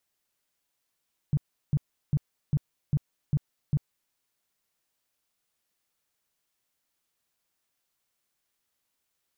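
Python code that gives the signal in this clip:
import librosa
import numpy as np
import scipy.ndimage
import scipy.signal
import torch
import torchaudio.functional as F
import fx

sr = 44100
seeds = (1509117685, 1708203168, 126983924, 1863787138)

y = fx.tone_burst(sr, hz=145.0, cycles=6, every_s=0.4, bursts=7, level_db=-19.5)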